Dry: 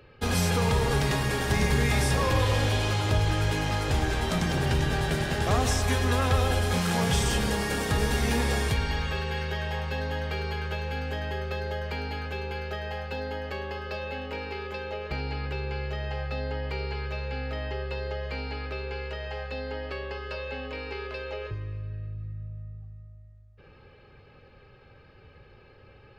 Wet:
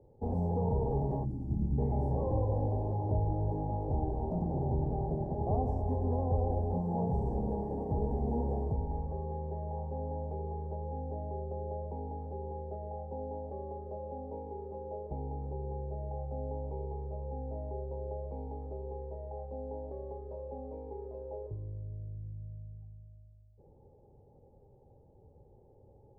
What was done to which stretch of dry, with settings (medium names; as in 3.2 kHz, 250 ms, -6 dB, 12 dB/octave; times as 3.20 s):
1.25–1.78 s: time-frequency box 350–4300 Hz -19 dB
whole clip: elliptic low-pass 860 Hz, stop band 40 dB; trim -5 dB